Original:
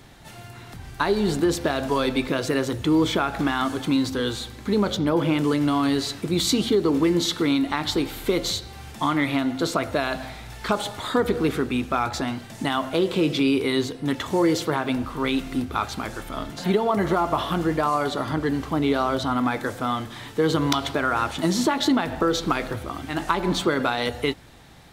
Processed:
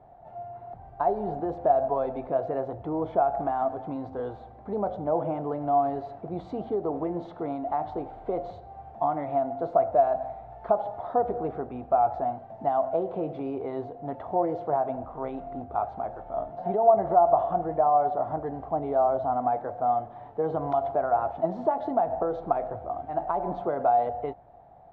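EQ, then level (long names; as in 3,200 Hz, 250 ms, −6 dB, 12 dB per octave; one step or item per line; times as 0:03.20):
low-pass with resonance 710 Hz, resonance Q 8.3
low-shelf EQ 130 Hz −5 dB
parametric band 280 Hz −7.5 dB 1.3 octaves
−6.5 dB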